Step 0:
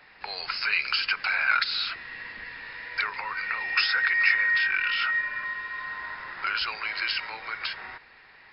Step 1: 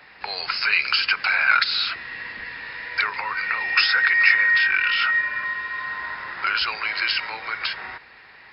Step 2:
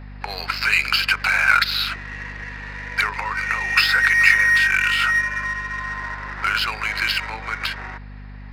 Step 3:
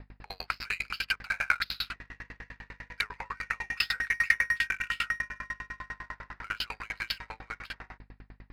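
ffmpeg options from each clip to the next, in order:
-af "highpass=42,volume=1.88"
-filter_complex "[0:a]aeval=exprs='val(0)+0.0126*(sin(2*PI*50*n/s)+sin(2*PI*2*50*n/s)/2+sin(2*PI*3*50*n/s)/3+sin(2*PI*4*50*n/s)/4+sin(2*PI*5*50*n/s)/5)':c=same,asplit=2[s0][s1];[s1]adynamicsmooth=sensitivity=3.5:basefreq=1400,volume=1.19[s2];[s0][s2]amix=inputs=2:normalize=0,volume=0.596"
-af "aeval=exprs='val(0)*pow(10,-36*if(lt(mod(10*n/s,1),2*abs(10)/1000),1-mod(10*n/s,1)/(2*abs(10)/1000),(mod(10*n/s,1)-2*abs(10)/1000)/(1-2*abs(10)/1000))/20)':c=same,volume=0.596"

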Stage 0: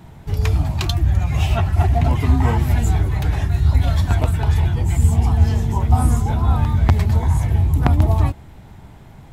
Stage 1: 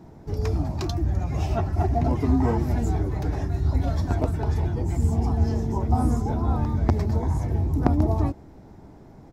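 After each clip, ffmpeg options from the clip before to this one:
-af "firequalizer=gain_entry='entry(120,0);entry(290,11);entry(910,2);entry(3100,-9);entry(5300,4);entry(8200,-6)':delay=0.05:min_phase=1,volume=0.398"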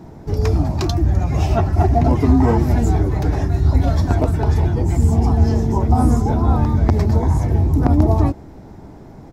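-af "alimiter=level_in=3.55:limit=0.891:release=50:level=0:latency=1,volume=0.708"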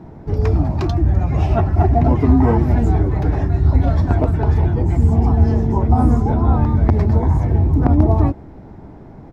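-af "bass=f=250:g=1,treble=f=4000:g=-14"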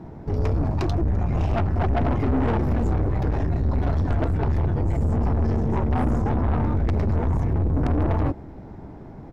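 -af "aeval=exprs='(tanh(8.91*val(0)+0.45)-tanh(0.45))/8.91':c=same"

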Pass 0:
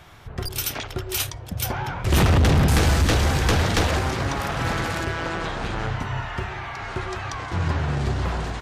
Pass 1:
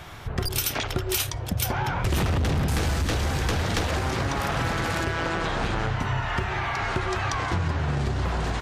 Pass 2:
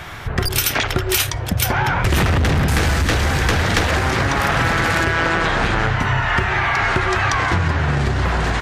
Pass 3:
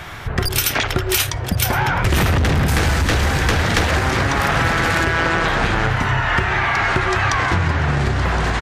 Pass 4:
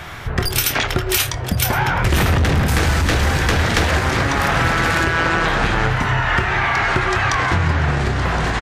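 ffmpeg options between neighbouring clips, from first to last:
-af "acompressor=threshold=0.0398:ratio=10,volume=2"
-af "equalizer=f=1800:w=1.3:g=5.5,volume=2.24"
-af "aecho=1:1:1067:0.178"
-filter_complex "[0:a]asplit=2[s0][s1];[s1]adelay=25,volume=0.251[s2];[s0][s2]amix=inputs=2:normalize=0"

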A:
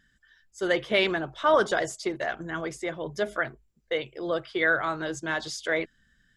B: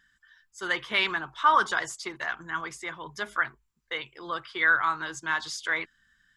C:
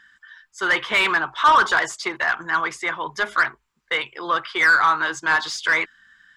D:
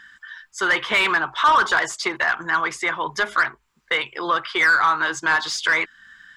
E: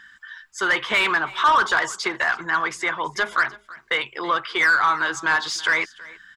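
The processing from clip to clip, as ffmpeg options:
-af "lowshelf=f=790:t=q:w=3:g=-8"
-filter_complex "[0:a]asplit=2[s0][s1];[s1]highpass=f=720:p=1,volume=7.94,asoftclip=type=tanh:threshold=0.335[s2];[s0][s2]amix=inputs=2:normalize=0,lowpass=f=2100:p=1,volume=0.501,volume=1.41"
-af "acompressor=threshold=0.02:ratio=1.5,volume=2.11"
-af "aecho=1:1:326:0.0944,volume=0.891"

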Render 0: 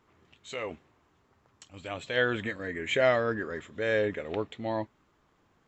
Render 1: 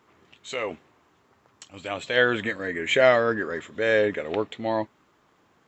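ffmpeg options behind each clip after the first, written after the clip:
-af "highpass=f=190:p=1,volume=2.11"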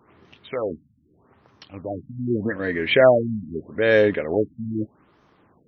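-af "lowshelf=f=380:g=6.5,afftfilt=real='re*lt(b*sr/1024,250*pow(6600/250,0.5+0.5*sin(2*PI*0.81*pts/sr)))':imag='im*lt(b*sr/1024,250*pow(6600/250,0.5+0.5*sin(2*PI*0.81*pts/sr)))':win_size=1024:overlap=0.75,volume=1.33"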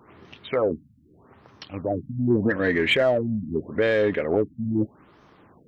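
-filter_complex "[0:a]asplit=2[s0][s1];[s1]asoftclip=type=tanh:threshold=0.106,volume=0.668[s2];[s0][s2]amix=inputs=2:normalize=0,alimiter=limit=0.266:level=0:latency=1:release=482"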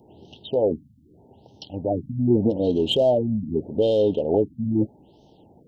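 -af "asuperstop=centerf=1600:order=20:qfactor=0.83,volume=1.26"

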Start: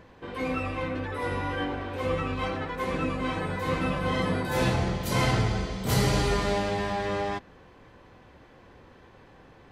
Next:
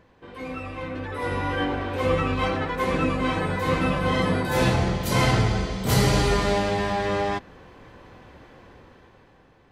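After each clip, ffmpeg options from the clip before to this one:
-af "dynaudnorm=f=220:g=11:m=3.55,volume=0.562"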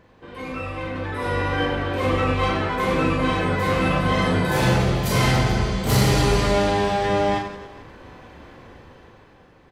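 -filter_complex "[0:a]aeval=exprs='0.422*(cos(1*acos(clip(val(0)/0.422,-1,1)))-cos(1*PI/2))+0.0668*(cos(5*acos(clip(val(0)/0.422,-1,1)))-cos(5*PI/2))':c=same,asplit=2[s0][s1];[s1]aecho=0:1:40|96|174.4|284.2|437.8:0.631|0.398|0.251|0.158|0.1[s2];[s0][s2]amix=inputs=2:normalize=0,volume=0.708"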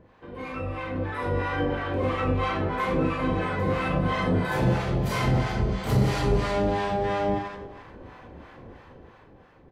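-filter_complex "[0:a]highshelf=f=3200:g=-10.5,acompressor=threshold=0.0562:ratio=1.5,acrossover=split=700[s0][s1];[s0]aeval=exprs='val(0)*(1-0.7/2+0.7/2*cos(2*PI*3*n/s))':c=same[s2];[s1]aeval=exprs='val(0)*(1-0.7/2-0.7/2*cos(2*PI*3*n/s))':c=same[s3];[s2][s3]amix=inputs=2:normalize=0,volume=1.26"

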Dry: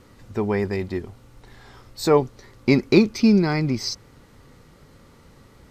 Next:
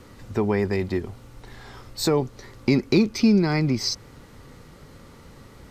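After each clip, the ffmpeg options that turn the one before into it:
-filter_complex "[0:a]acrossover=split=320|3300[s0][s1][s2];[s1]alimiter=limit=0.141:level=0:latency=1:release=25[s3];[s0][s3][s2]amix=inputs=3:normalize=0,acompressor=threshold=0.0398:ratio=1.5,volume=1.58"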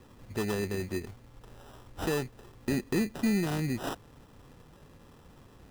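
-af "acrusher=samples=20:mix=1:aa=0.000001,asoftclip=type=tanh:threshold=0.251,volume=0.398"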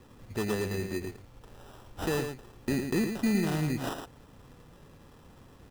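-af "aecho=1:1:111:0.447"

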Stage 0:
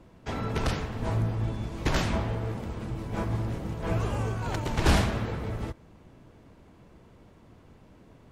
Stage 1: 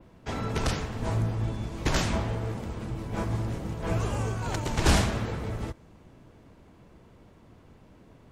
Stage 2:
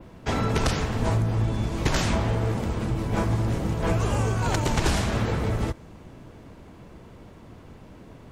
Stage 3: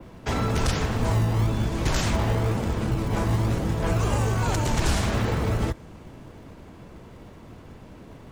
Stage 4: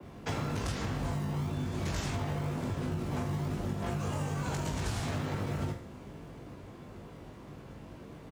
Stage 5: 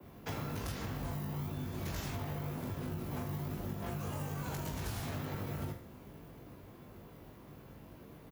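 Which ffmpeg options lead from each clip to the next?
-af "adynamicequalizer=threshold=0.00178:dfrequency=7300:dqfactor=0.95:tfrequency=7300:tqfactor=0.95:attack=5:release=100:ratio=0.375:range=3:mode=boostabove:tftype=bell"
-af "acompressor=threshold=0.0447:ratio=12,volume=2.51"
-filter_complex "[0:a]acrossover=split=120|5500[s0][s1][s2];[s0]acrusher=samples=36:mix=1:aa=0.000001:lfo=1:lforange=21.6:lforate=1[s3];[s1]alimiter=limit=0.0944:level=0:latency=1:release=22[s4];[s3][s4][s2]amix=inputs=3:normalize=0,volume=1.19"
-af "afreqshift=35,aecho=1:1:20|44|72.8|107.4|148.8:0.631|0.398|0.251|0.158|0.1,acompressor=threshold=0.0562:ratio=6,volume=0.531"
-af "aexciter=amount=5.4:drive=6.3:freq=11000,volume=0.531"

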